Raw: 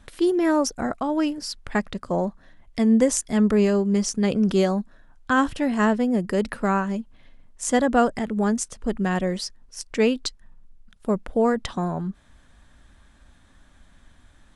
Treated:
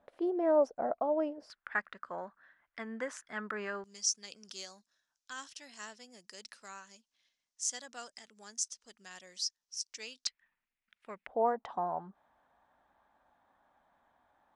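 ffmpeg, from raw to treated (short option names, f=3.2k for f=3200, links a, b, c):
-af "asetnsamples=n=441:p=0,asendcmd='1.5 bandpass f 1500;3.84 bandpass f 5700;10.27 bandpass f 2200;11.27 bandpass f 810',bandpass=f=630:t=q:w=3.2:csg=0"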